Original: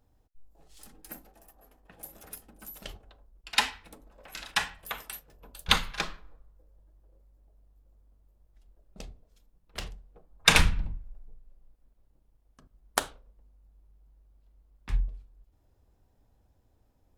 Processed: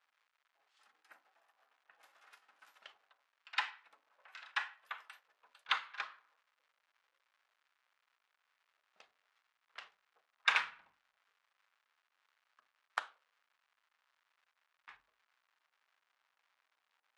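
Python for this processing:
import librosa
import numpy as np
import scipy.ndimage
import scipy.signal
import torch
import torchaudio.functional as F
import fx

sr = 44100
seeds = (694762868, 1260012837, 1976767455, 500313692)

y = fx.envelope_flatten(x, sr, power=0.6, at=(2.0, 2.76), fade=0.02)
y = fx.dmg_crackle(y, sr, seeds[0], per_s=310.0, level_db=-49.0)
y = fx.ladder_bandpass(y, sr, hz=1600.0, resonance_pct=25)
y = F.gain(torch.from_numpy(y), 3.5).numpy()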